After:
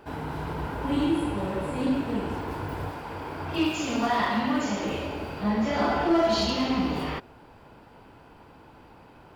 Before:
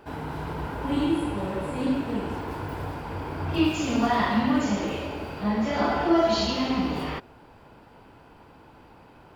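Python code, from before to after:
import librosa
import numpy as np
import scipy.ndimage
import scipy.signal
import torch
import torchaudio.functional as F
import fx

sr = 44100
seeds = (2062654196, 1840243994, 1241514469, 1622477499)

p1 = fx.low_shelf(x, sr, hz=220.0, db=-8.5, at=(2.89, 4.86))
p2 = 10.0 ** (-19.5 / 20.0) * (np.abs((p1 / 10.0 ** (-19.5 / 20.0) + 3.0) % 4.0 - 2.0) - 1.0)
p3 = p1 + (p2 * librosa.db_to_amplitude(-9.0))
y = p3 * librosa.db_to_amplitude(-2.5)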